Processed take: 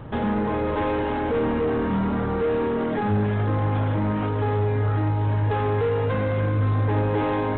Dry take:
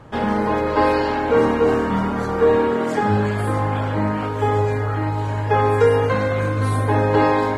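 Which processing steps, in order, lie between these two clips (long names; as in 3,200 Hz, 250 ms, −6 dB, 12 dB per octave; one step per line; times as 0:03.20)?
soft clipping −16.5 dBFS, distortion −12 dB
reversed playback
upward compression, threshold −31 dBFS
reversed playback
brickwall limiter −22.5 dBFS, peak gain reduction 6 dB
low-shelf EQ 380 Hz +7.5 dB
G.726 32 kbit/s 8,000 Hz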